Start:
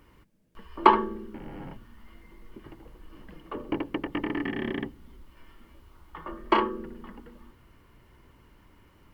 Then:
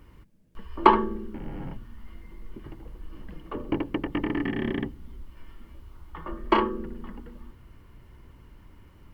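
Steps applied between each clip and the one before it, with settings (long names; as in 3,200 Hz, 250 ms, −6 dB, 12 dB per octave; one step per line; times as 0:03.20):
low-shelf EQ 190 Hz +9 dB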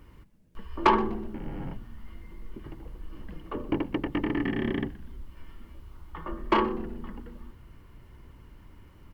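soft clipping −12 dBFS, distortion −11 dB
echo with shifted repeats 123 ms, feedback 38%, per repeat −88 Hz, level −19.5 dB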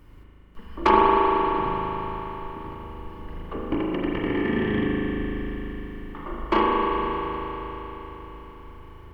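convolution reverb RT60 4.4 s, pre-delay 38 ms, DRR −4.5 dB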